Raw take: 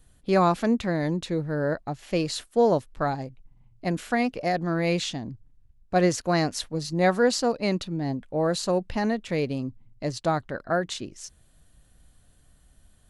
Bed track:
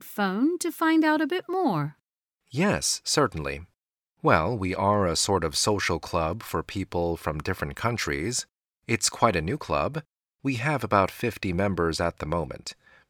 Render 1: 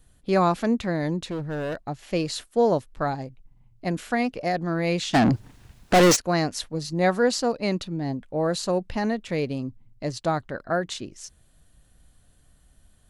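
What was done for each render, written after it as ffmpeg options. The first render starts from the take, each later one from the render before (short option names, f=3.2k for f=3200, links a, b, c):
-filter_complex "[0:a]asettb=1/sr,asplit=3[a][b][c];[a]atrim=end=1.294[d];[b]atrim=start=1.29:end=1.76,asetpts=PTS-STARTPTS,afade=t=in:d=0.004:c=qsin,afade=t=out:st=0.466:d=0.004:c=qsin,asoftclip=type=hard:threshold=-26.5dB[e];[c]atrim=start=1.756[f];[d][e]acrossfade=d=0.004:c1=hsin:c2=qsin[g];[g][f]acrossfade=d=0.004:c1=qsin:c2=hsin,asplit=3[h][i][j];[h]afade=t=out:st=5.13:d=0.02[k];[i]asplit=2[l][m];[m]highpass=f=720:p=1,volume=39dB,asoftclip=type=tanh:threshold=-9.5dB[n];[l][n]amix=inputs=2:normalize=0,lowpass=f=6k:p=1,volume=-6dB,afade=t=in:st=5.13:d=0.02,afade=t=out:st=6.15:d=0.02[o];[j]afade=t=in:st=6.15:d=0.02[p];[k][o][p]amix=inputs=3:normalize=0"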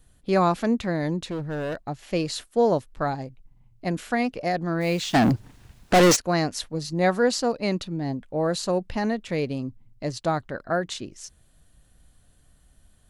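-filter_complex "[0:a]asplit=3[a][b][c];[a]afade=t=out:st=4.8:d=0.02[d];[b]acrusher=bits=6:mix=0:aa=0.5,afade=t=in:st=4.8:d=0.02,afade=t=out:st=5.31:d=0.02[e];[c]afade=t=in:st=5.31:d=0.02[f];[d][e][f]amix=inputs=3:normalize=0"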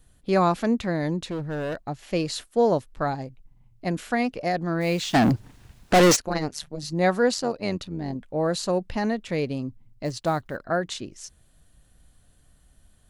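-filter_complex "[0:a]asettb=1/sr,asplit=3[a][b][c];[a]atrim=end=6.254[d];[b]atrim=start=6.25:end=6.83,asetpts=PTS-STARTPTS,afade=t=in:d=0.004:c=qsin,afade=t=out:st=0.576:d=0.004:c=qsin,tremolo=f=150:d=0.947[e];[c]atrim=start=6.826[f];[d][e]acrossfade=d=0.004:c1=hsin:c2=qsin[g];[g][f]acrossfade=d=0.004:c1=qsin:c2=hsin,asettb=1/sr,asplit=3[h][i][j];[h]atrim=end=7.344[k];[i]atrim=start=7.34:end=8.16,asetpts=PTS-STARTPTS,afade=t=in:d=0.004:c=qsin,afade=t=out:st=0.816:d=0.004:c=qsin,tremolo=f=93:d=0.571[l];[j]atrim=start=8.156[m];[k][l]acrossfade=d=0.004:c1=hsin:c2=qsin[n];[n][m]acrossfade=d=0.004:c1=qsin:c2=hsin,asettb=1/sr,asplit=3[o][p][q];[o]atrim=end=10.054[r];[p]atrim=start=10.05:end=10.57,asetpts=PTS-STARTPTS,afade=t=in:d=0.004:c=qsin,afade=t=out:st=0.516:d=0.004:c=qsin,acrusher=bits=8:mode=log:mix=0:aa=0.000001[s];[q]atrim=start=10.566[t];[r][s]acrossfade=d=0.004:c1=hsin:c2=qsin[u];[u][t]acrossfade=d=0.004:c1=qsin:c2=hsin"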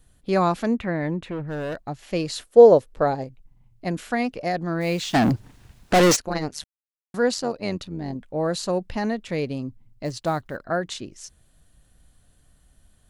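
-filter_complex "[0:a]asettb=1/sr,asplit=3[a][b][c];[a]atrim=end=0.774[d];[b]atrim=start=0.77:end=1.48,asetpts=PTS-STARTPTS,afade=t=in:d=0.004:c=qsin,afade=t=out:st=0.706:d=0.004:c=qsin,highshelf=f=3.4k:t=q:w=1.5:g=-11[e];[c]atrim=start=1.476[f];[d][e]acrossfade=d=0.004:c1=hsin:c2=qsin[g];[g][f]acrossfade=d=0.004:c1=qsin:c2=hsin,asettb=1/sr,asplit=3[h][i][j];[h]atrim=end=2.464[k];[i]atrim=start=2.46:end=3.24,asetpts=PTS-STARTPTS,afade=t=in:d=0.004:c=qsin,afade=t=out:st=0.776:d=0.004:c=qsin,equalizer=f=490:t=o:w=0.83:g=11.5[l];[j]atrim=start=3.236[m];[k][l]acrossfade=d=0.004:c1=hsin:c2=qsin[n];[n][m]acrossfade=d=0.004:c1=qsin:c2=hsin,asplit=3[o][p][q];[o]atrim=end=6.64,asetpts=PTS-STARTPTS,afade=t=out:st=6.636:d=0.004:c=hsin[r];[p]atrim=start=6.64:end=7.14,asetpts=PTS-STARTPTS,volume=0[s];[q]atrim=start=7.14,asetpts=PTS-STARTPTS,afade=t=in:d=0.004:c=hsin[t];[r][s][t]concat=n=3:v=0:a=1"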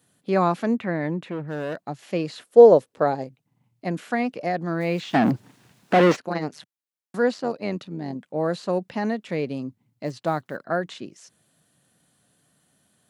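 -filter_complex "[0:a]acrossover=split=3200[a][b];[b]acompressor=threshold=-47dB:ratio=4:attack=1:release=60[c];[a][c]amix=inputs=2:normalize=0,highpass=f=140:w=0.5412,highpass=f=140:w=1.3066"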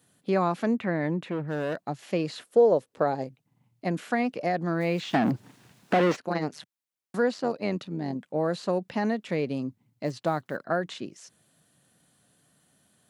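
-af "acompressor=threshold=-23dB:ratio=2"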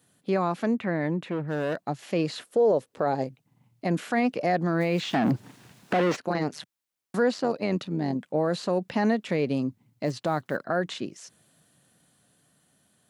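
-af "dynaudnorm=f=350:g=11:m=4dB,alimiter=limit=-15dB:level=0:latency=1:release=36"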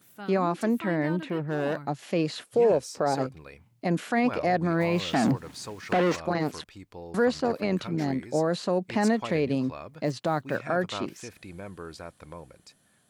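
-filter_complex "[1:a]volume=-15.5dB[a];[0:a][a]amix=inputs=2:normalize=0"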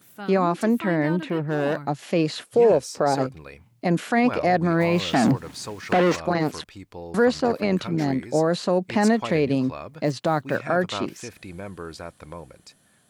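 -af "volume=4.5dB"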